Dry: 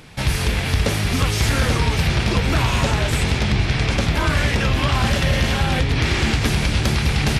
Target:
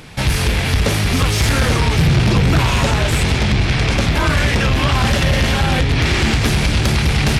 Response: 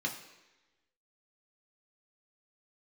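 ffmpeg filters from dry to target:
-filter_complex "[0:a]asettb=1/sr,asplit=3[link_01][link_02][link_03];[link_01]atrim=end=1.964[link_04];[link_02]atrim=start=1.96:end=2.59,asetpts=PTS-STARTPTS,afade=type=in:duration=0.004:curve=qsin,afade=type=out:start_time=0.626:duration=0.004:curve=qsin,equalizer=frequency=140:width=1.5:gain=9.5[link_05];[link_03]atrim=start=2.586[link_06];[link_04][link_05]acrossfade=duration=0.004:curve1=hsin:curve2=qsin[link_07];[link_07][link_06]acrossfade=duration=0.004:curve1=qsin:curve2=hsin,asoftclip=type=tanh:threshold=-14dB,volume=5.5dB"

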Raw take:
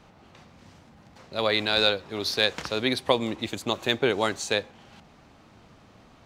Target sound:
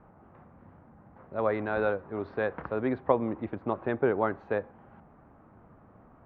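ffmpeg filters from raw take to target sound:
ffmpeg -i in.wav -af "lowpass=frequency=1500:width=0.5412,lowpass=frequency=1500:width=1.3066,volume=-1.5dB" out.wav

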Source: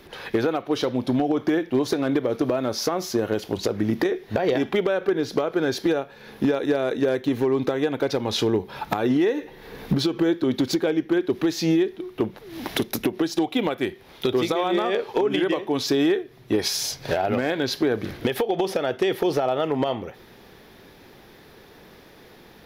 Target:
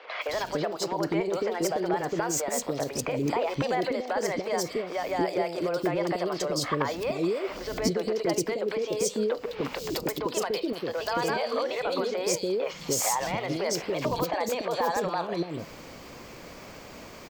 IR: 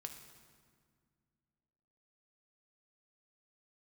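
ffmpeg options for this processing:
-filter_complex "[0:a]alimiter=limit=-23dB:level=0:latency=1:release=189,acrossover=split=380|2600[link_01][link_02][link_03];[link_03]adelay=280[link_04];[link_01]adelay=380[link_05];[link_05][link_02][link_04]amix=inputs=3:normalize=0,asetrate=57771,aresample=44100,volume=5.5dB"

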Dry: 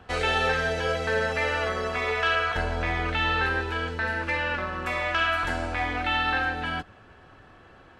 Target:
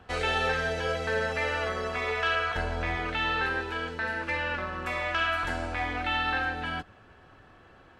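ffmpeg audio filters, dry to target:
ffmpeg -i in.wav -filter_complex "[0:a]asettb=1/sr,asplit=3[link_01][link_02][link_03];[link_01]atrim=end=2.964[link_04];[link_02]atrim=start=2.96:end=4.3,asetpts=PTS-STARTPTS,afade=type=in:duration=0.004:curve=qsin,afade=type=out:start_time=1.336:duration=0.004:curve=qsin,equalizer=frequency=66:width_type=o:width=1:gain=-8.5[link_05];[link_03]atrim=start=4.296[link_06];[link_04][link_05]acrossfade=duration=0.004:curve1=hsin:curve2=qsin[link_07];[link_07][link_06]acrossfade=duration=0.004:curve1=qsin:curve2=hsin,volume=-3dB" out.wav

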